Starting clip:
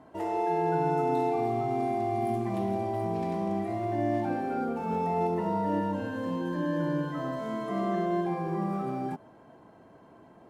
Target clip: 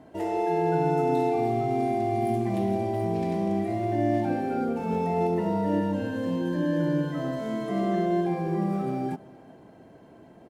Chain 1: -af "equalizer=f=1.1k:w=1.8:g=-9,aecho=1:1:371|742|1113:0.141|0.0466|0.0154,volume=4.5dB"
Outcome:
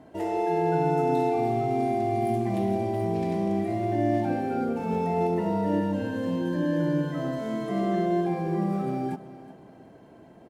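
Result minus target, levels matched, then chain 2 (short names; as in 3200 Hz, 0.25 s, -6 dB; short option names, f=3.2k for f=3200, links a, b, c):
echo-to-direct +7.5 dB
-af "equalizer=f=1.1k:w=1.8:g=-9,aecho=1:1:371|742:0.0596|0.0197,volume=4.5dB"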